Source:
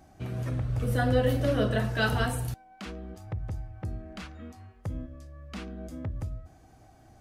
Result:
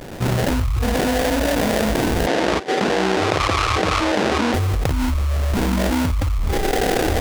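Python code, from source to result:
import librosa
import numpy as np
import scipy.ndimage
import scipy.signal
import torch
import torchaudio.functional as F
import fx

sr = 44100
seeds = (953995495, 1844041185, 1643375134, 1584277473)

y = fx.recorder_agc(x, sr, target_db=-15.5, rise_db_per_s=22.0, max_gain_db=30)
y = fx.noise_reduce_blind(y, sr, reduce_db=29)
y = fx.room_early_taps(y, sr, ms=(39, 52), db=(-12.5, -12.5))
y = fx.quant_dither(y, sr, seeds[0], bits=12, dither='triangular')
y = fx.peak_eq(y, sr, hz=1400.0, db=6.5, octaves=0.44)
y = fx.sample_hold(y, sr, seeds[1], rate_hz=1200.0, jitter_pct=20)
y = fx.bandpass_edges(y, sr, low_hz=270.0, high_hz=5500.0, at=(2.26, 4.53), fade=0.02)
y = fx.env_flatten(y, sr, amount_pct=100)
y = F.gain(torch.from_numpy(y), -2.5).numpy()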